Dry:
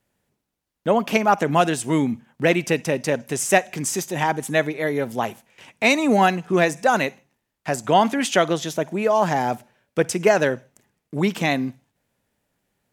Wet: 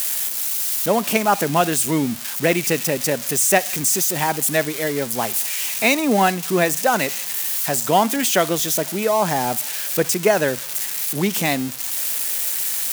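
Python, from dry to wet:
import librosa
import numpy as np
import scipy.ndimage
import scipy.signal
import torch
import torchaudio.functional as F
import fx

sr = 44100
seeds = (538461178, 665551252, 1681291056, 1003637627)

y = x + 0.5 * 10.0 ** (-15.0 / 20.0) * np.diff(np.sign(x), prepend=np.sign(x[:1]))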